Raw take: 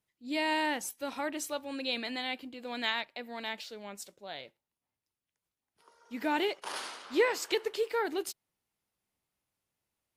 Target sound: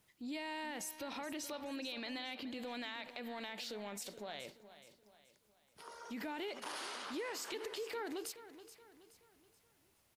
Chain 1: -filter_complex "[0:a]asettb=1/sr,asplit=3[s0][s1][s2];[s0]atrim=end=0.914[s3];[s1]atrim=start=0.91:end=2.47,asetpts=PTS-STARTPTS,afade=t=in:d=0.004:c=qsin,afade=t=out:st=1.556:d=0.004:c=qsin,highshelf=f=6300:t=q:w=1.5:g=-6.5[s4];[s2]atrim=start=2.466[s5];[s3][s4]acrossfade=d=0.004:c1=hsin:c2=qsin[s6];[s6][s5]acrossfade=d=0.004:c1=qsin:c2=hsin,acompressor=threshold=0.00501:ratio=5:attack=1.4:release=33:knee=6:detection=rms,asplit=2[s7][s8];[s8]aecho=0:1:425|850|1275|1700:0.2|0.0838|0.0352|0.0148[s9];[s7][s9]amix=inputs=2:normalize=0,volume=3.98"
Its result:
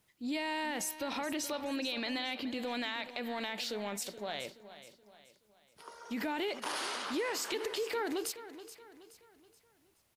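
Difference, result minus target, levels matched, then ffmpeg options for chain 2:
compression: peak gain reduction -7 dB
-filter_complex "[0:a]asettb=1/sr,asplit=3[s0][s1][s2];[s0]atrim=end=0.914[s3];[s1]atrim=start=0.91:end=2.47,asetpts=PTS-STARTPTS,afade=t=in:d=0.004:c=qsin,afade=t=out:st=1.556:d=0.004:c=qsin,highshelf=f=6300:t=q:w=1.5:g=-6.5[s4];[s2]atrim=start=2.466[s5];[s3][s4]acrossfade=d=0.004:c1=hsin:c2=qsin[s6];[s6][s5]acrossfade=d=0.004:c1=qsin:c2=hsin,acompressor=threshold=0.00178:ratio=5:attack=1.4:release=33:knee=6:detection=rms,asplit=2[s7][s8];[s8]aecho=0:1:425|850|1275|1700:0.2|0.0838|0.0352|0.0148[s9];[s7][s9]amix=inputs=2:normalize=0,volume=3.98"

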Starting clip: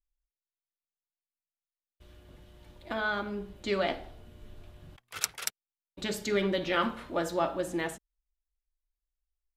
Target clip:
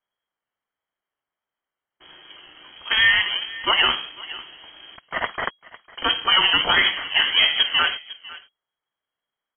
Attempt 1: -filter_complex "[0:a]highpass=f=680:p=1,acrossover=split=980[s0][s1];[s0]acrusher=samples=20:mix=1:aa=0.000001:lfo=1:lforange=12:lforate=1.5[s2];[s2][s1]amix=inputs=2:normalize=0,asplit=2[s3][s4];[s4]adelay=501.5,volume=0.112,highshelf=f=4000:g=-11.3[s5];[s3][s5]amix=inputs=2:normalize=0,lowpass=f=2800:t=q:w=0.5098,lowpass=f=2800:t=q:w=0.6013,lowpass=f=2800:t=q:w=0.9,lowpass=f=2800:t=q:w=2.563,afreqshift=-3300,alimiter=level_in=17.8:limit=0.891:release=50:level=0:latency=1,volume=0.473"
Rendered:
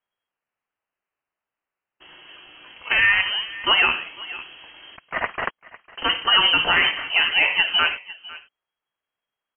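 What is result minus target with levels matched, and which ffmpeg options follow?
decimation with a swept rate: distortion -35 dB
-filter_complex "[0:a]highpass=f=680:p=1,acrossover=split=980[s0][s1];[s0]acrusher=samples=63:mix=1:aa=0.000001:lfo=1:lforange=37.8:lforate=1.5[s2];[s2][s1]amix=inputs=2:normalize=0,asplit=2[s3][s4];[s4]adelay=501.5,volume=0.112,highshelf=f=4000:g=-11.3[s5];[s3][s5]amix=inputs=2:normalize=0,lowpass=f=2800:t=q:w=0.5098,lowpass=f=2800:t=q:w=0.6013,lowpass=f=2800:t=q:w=0.9,lowpass=f=2800:t=q:w=2.563,afreqshift=-3300,alimiter=level_in=17.8:limit=0.891:release=50:level=0:latency=1,volume=0.473"

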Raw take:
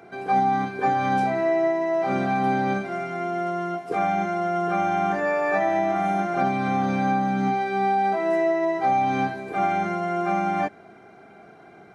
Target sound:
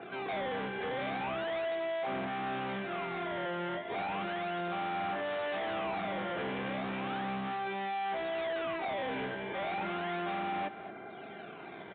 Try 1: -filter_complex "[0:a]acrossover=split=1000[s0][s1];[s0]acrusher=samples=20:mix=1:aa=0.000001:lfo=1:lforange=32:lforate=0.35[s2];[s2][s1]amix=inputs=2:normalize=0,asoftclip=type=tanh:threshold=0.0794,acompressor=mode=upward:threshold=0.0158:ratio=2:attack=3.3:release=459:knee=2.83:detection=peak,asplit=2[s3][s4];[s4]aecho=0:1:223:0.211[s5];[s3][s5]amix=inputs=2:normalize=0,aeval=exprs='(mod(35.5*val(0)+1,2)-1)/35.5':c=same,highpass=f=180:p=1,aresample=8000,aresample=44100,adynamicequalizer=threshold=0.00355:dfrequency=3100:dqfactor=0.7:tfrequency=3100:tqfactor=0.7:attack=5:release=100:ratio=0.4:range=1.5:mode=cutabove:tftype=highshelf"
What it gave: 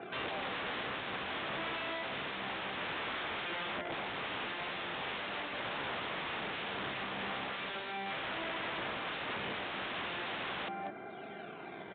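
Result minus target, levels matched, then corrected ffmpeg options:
saturation: distortion -8 dB
-filter_complex "[0:a]acrossover=split=1000[s0][s1];[s0]acrusher=samples=20:mix=1:aa=0.000001:lfo=1:lforange=32:lforate=0.35[s2];[s2][s1]amix=inputs=2:normalize=0,asoftclip=type=tanh:threshold=0.0211,acompressor=mode=upward:threshold=0.0158:ratio=2:attack=3.3:release=459:knee=2.83:detection=peak,asplit=2[s3][s4];[s4]aecho=0:1:223:0.211[s5];[s3][s5]amix=inputs=2:normalize=0,aeval=exprs='(mod(35.5*val(0)+1,2)-1)/35.5':c=same,highpass=f=180:p=1,aresample=8000,aresample=44100,adynamicequalizer=threshold=0.00355:dfrequency=3100:dqfactor=0.7:tfrequency=3100:tqfactor=0.7:attack=5:release=100:ratio=0.4:range=1.5:mode=cutabove:tftype=highshelf"

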